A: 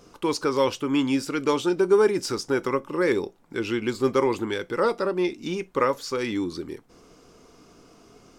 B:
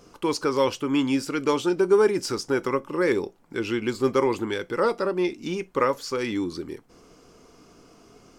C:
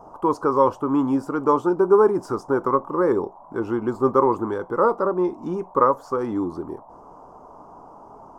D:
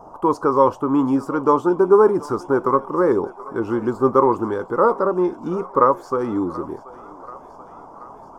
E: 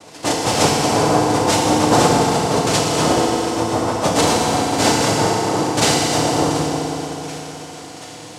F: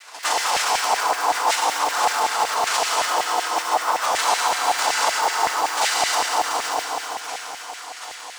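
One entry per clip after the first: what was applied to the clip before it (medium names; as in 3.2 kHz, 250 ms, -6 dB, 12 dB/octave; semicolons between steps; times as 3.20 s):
band-stop 3.7 kHz, Q 19
peaking EQ 4.3 kHz -7.5 dB 0.9 oct; band noise 560–1000 Hz -53 dBFS; resonant high shelf 1.6 kHz -12.5 dB, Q 3; trim +2 dB
thinning echo 732 ms, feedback 74%, high-pass 640 Hz, level -17 dB; trim +2.5 dB
one-sided clip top -20 dBFS; noise-vocoded speech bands 2; FDN reverb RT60 3.8 s, high-frequency decay 0.9×, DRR -3.5 dB; trim -1.5 dB
block-companded coder 5-bit; peak limiter -11 dBFS, peak gain reduction 9 dB; LFO high-pass saw down 5.3 Hz 750–2000 Hz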